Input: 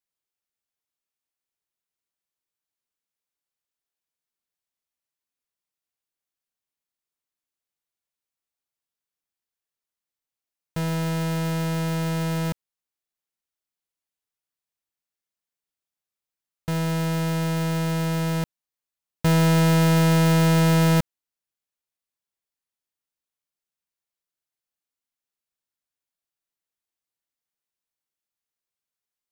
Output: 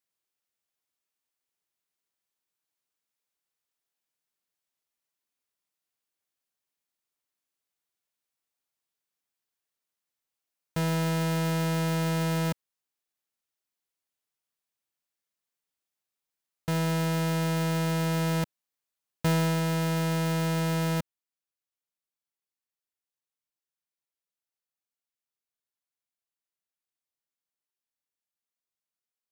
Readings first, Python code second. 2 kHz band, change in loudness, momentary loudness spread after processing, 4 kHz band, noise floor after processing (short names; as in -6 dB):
-4.5 dB, -5.5 dB, 6 LU, -4.5 dB, under -85 dBFS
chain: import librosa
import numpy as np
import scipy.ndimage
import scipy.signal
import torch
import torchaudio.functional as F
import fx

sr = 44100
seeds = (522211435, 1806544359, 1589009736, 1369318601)

p1 = 10.0 ** (-30.0 / 20.0) * np.tanh(x / 10.0 ** (-30.0 / 20.0))
p2 = x + F.gain(torch.from_numpy(p1), -4.5).numpy()
p3 = fx.rider(p2, sr, range_db=4, speed_s=0.5)
p4 = fx.low_shelf(p3, sr, hz=83.0, db=-8.5)
y = F.gain(torch.from_numpy(p4), -5.5).numpy()